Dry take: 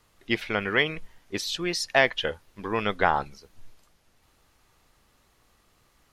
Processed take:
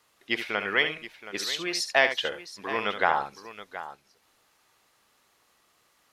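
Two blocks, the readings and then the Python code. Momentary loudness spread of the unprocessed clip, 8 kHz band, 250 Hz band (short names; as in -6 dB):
14 LU, +0.5 dB, -6.0 dB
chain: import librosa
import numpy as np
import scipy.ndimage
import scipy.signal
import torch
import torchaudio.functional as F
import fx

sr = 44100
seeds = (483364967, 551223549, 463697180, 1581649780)

p1 = fx.highpass(x, sr, hz=530.0, slope=6)
y = p1 + fx.echo_multitap(p1, sr, ms=(71, 723), db=(-9.5, -14.0), dry=0)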